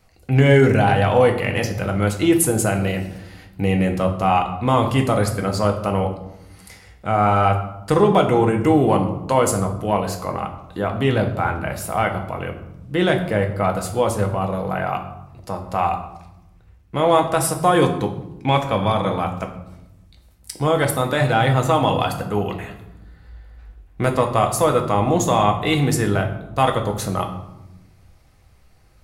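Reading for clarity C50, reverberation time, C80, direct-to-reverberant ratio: 9.5 dB, 0.95 s, 12.0 dB, 3.0 dB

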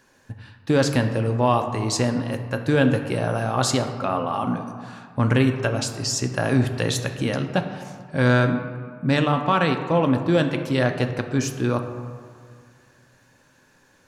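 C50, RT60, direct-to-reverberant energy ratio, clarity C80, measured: 8.5 dB, 2.0 s, 5.5 dB, 9.5 dB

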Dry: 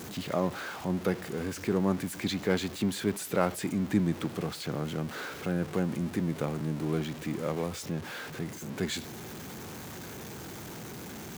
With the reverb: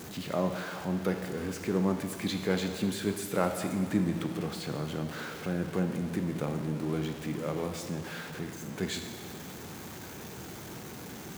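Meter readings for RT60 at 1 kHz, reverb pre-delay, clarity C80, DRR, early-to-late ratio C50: 2.2 s, 5 ms, 8.0 dB, 5.5 dB, 7.0 dB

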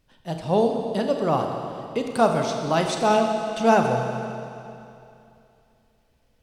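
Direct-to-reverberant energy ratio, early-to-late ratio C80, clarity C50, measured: 3.0 dB, 5.0 dB, 4.0 dB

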